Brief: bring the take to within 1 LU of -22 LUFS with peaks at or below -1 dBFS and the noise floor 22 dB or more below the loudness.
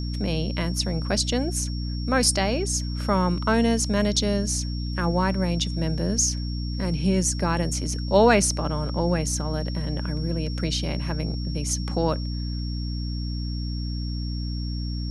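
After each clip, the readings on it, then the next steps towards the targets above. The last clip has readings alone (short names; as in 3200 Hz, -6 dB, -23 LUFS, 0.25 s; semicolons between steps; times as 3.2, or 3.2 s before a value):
hum 60 Hz; harmonics up to 300 Hz; hum level -26 dBFS; steady tone 5500 Hz; tone level -39 dBFS; loudness -25.0 LUFS; peak -6.0 dBFS; loudness target -22.0 LUFS
-> notches 60/120/180/240/300 Hz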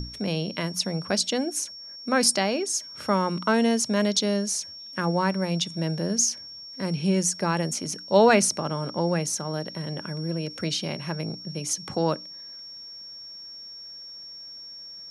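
hum none; steady tone 5500 Hz; tone level -39 dBFS
-> notch 5500 Hz, Q 30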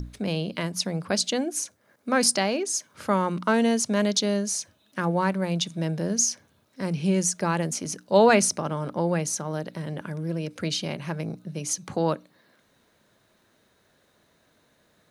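steady tone none; loudness -25.5 LUFS; peak -6.0 dBFS; loudness target -22.0 LUFS
-> gain +3.5 dB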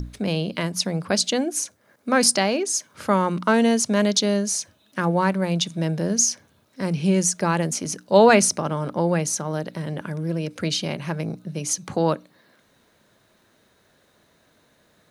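loudness -22.0 LUFS; peak -2.5 dBFS; noise floor -62 dBFS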